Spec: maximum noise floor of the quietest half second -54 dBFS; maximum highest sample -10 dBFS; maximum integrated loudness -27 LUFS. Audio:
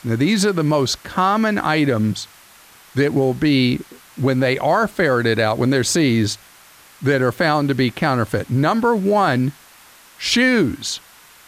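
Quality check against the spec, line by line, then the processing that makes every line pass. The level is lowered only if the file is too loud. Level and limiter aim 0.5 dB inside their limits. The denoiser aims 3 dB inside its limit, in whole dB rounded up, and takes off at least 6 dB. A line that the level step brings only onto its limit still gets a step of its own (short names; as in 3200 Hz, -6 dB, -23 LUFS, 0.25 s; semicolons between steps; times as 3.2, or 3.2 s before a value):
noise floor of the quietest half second -47 dBFS: fail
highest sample -4.5 dBFS: fail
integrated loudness -18.0 LUFS: fail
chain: gain -9.5 dB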